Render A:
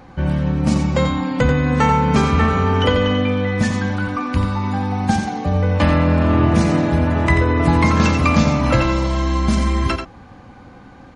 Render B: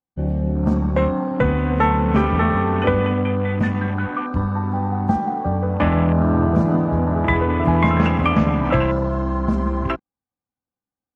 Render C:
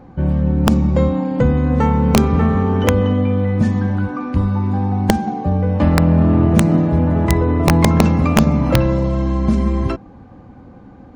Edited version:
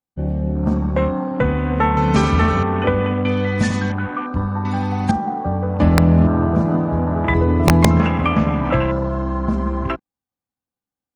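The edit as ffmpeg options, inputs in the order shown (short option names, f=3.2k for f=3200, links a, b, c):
-filter_complex "[0:a]asplit=3[a][b][c];[2:a]asplit=2[d][e];[1:a]asplit=6[f][g][h][i][j][k];[f]atrim=end=1.972[l];[a]atrim=start=1.968:end=2.632[m];[g]atrim=start=2.628:end=3.252[n];[b]atrim=start=3.248:end=3.922[o];[h]atrim=start=3.918:end=4.652[p];[c]atrim=start=4.648:end=5.112[q];[i]atrim=start=5.108:end=5.792[r];[d]atrim=start=5.788:end=6.272[s];[j]atrim=start=6.268:end=7.342[t];[e]atrim=start=7.338:end=8.002[u];[k]atrim=start=7.998[v];[l][m]acrossfade=d=0.004:c1=hsin:c2=hsin[w];[w][n]acrossfade=d=0.004:c1=hsin:c2=hsin[x];[x][o]acrossfade=d=0.004:c1=hsin:c2=hsin[y];[y][p]acrossfade=d=0.004:c1=hsin:c2=hsin[z];[z][q]acrossfade=d=0.004:c1=hsin:c2=hsin[aa];[aa][r]acrossfade=d=0.004:c1=hsin:c2=hsin[ab];[ab][s]acrossfade=d=0.004:c1=hsin:c2=hsin[ac];[ac][t]acrossfade=d=0.004:c1=hsin:c2=hsin[ad];[ad][u]acrossfade=d=0.004:c1=hsin:c2=hsin[ae];[ae][v]acrossfade=d=0.004:c1=hsin:c2=hsin"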